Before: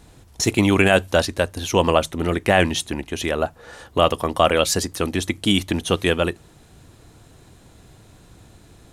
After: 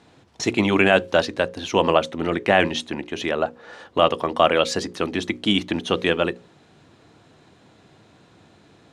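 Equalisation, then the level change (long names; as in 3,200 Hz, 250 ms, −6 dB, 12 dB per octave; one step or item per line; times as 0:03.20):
high-pass filter 160 Hz 12 dB per octave
low-pass filter 4,400 Hz 12 dB per octave
mains-hum notches 60/120/180/240/300/360/420/480/540 Hz
0.0 dB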